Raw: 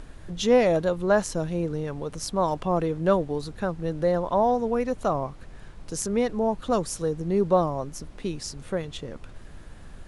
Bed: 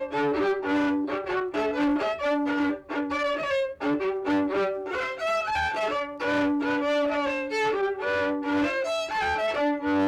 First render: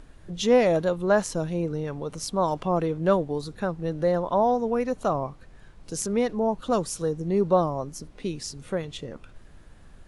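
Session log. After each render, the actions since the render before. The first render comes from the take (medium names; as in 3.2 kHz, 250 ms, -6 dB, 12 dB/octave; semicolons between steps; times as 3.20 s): noise print and reduce 6 dB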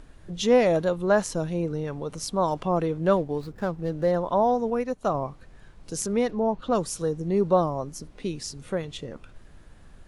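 3.16–4.11 s: median filter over 15 samples; 4.70–5.14 s: upward expansion, over -43 dBFS; 6.30–6.74 s: low-pass 6.4 kHz -> 3.8 kHz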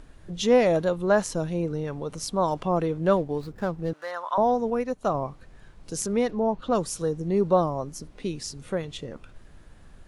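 3.93–4.38 s: resonant high-pass 1.2 kHz, resonance Q 2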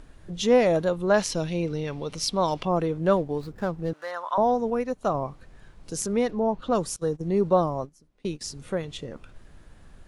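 1.14–2.65 s: high-order bell 3.4 kHz +8.5 dB; 6.96–8.41 s: gate -34 dBFS, range -20 dB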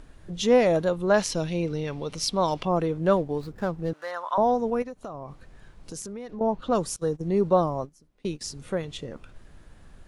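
4.82–6.41 s: compression 10:1, threshold -33 dBFS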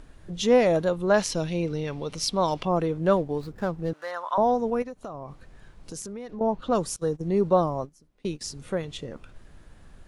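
no audible change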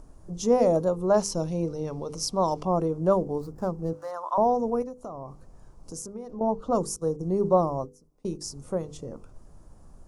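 high-order bell 2.5 kHz -15.5 dB; hum notches 50/100/150/200/250/300/350/400/450/500 Hz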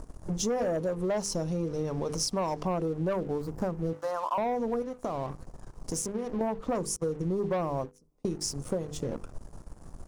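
waveshaping leveller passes 2; compression 6:1, threshold -28 dBFS, peak gain reduction 13.5 dB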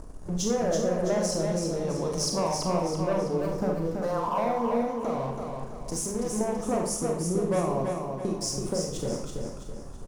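feedback delay 330 ms, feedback 42%, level -5 dB; Schroeder reverb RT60 0.5 s, combs from 30 ms, DRR 2 dB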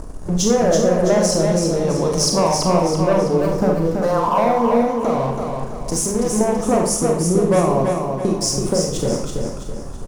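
trim +10.5 dB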